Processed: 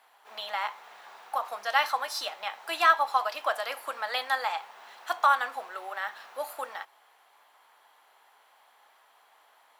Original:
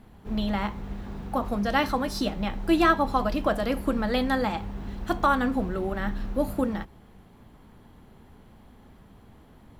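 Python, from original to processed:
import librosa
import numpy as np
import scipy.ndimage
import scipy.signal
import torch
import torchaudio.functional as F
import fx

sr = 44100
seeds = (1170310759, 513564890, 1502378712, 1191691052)

y = scipy.signal.sosfilt(scipy.signal.butter(4, 740.0, 'highpass', fs=sr, output='sos'), x)
y = y * librosa.db_to_amplitude(1.5)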